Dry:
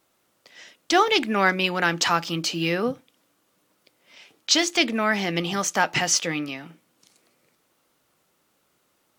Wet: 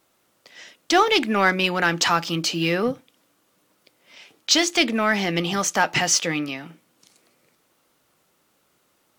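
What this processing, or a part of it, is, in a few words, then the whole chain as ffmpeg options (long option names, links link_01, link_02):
parallel distortion: -filter_complex "[0:a]asplit=2[link_01][link_02];[link_02]asoftclip=type=hard:threshold=-20dB,volume=-9.5dB[link_03];[link_01][link_03]amix=inputs=2:normalize=0"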